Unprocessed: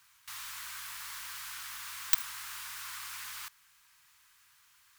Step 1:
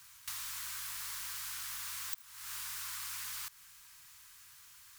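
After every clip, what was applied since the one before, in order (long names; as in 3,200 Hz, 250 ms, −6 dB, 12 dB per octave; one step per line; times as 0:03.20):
bass and treble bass +7 dB, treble +6 dB
downward compressor 16 to 1, threshold −41 dBFS, peak gain reduction 28.5 dB
level +3 dB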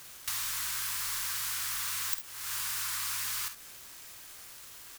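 bit reduction 9 bits
on a send: ambience of single reflections 50 ms −10.5 dB, 67 ms −13 dB
on the sum: level +7 dB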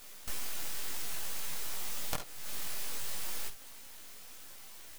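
full-wave rectification
multi-voice chorus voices 4, 0.57 Hz, delay 19 ms, depth 4.1 ms
level +1 dB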